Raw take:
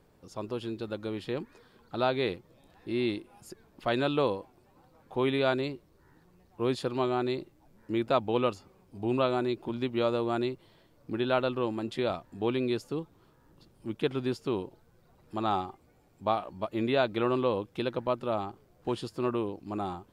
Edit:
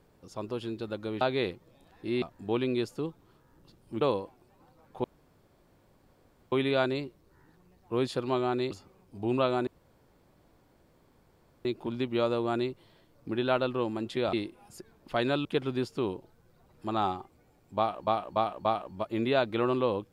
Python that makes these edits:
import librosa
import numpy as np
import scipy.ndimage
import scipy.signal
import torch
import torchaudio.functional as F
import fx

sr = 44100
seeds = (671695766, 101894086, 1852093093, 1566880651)

y = fx.edit(x, sr, fx.cut(start_s=1.21, length_s=0.83),
    fx.swap(start_s=3.05, length_s=1.12, other_s=12.15, other_length_s=1.79),
    fx.insert_room_tone(at_s=5.2, length_s=1.48),
    fx.cut(start_s=7.39, length_s=1.12),
    fx.insert_room_tone(at_s=9.47, length_s=1.98),
    fx.repeat(start_s=16.27, length_s=0.29, count=4), tone=tone)